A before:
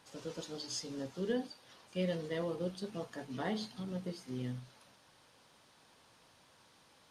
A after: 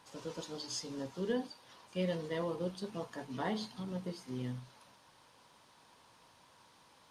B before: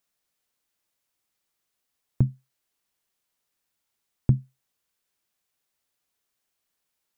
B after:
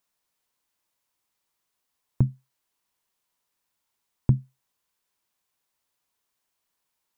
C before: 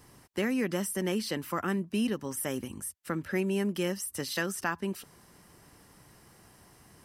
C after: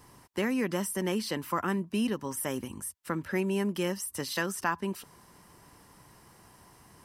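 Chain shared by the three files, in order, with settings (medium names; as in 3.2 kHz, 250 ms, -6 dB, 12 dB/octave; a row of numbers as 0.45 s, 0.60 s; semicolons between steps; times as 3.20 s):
peaking EQ 980 Hz +7 dB 0.34 oct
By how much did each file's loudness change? 0.0 LU, 0.0 LU, +0.5 LU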